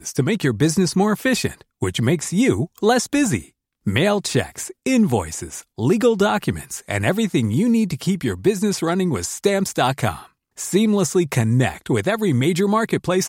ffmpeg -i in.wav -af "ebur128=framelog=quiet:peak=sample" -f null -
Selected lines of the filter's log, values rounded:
Integrated loudness:
  I:         -20.0 LUFS
  Threshold: -30.1 LUFS
Loudness range:
  LRA:         1.1 LU
  Threshold: -40.3 LUFS
  LRA low:   -20.8 LUFS
  LRA high:  -19.7 LUFS
Sample peak:
  Peak:       -4.1 dBFS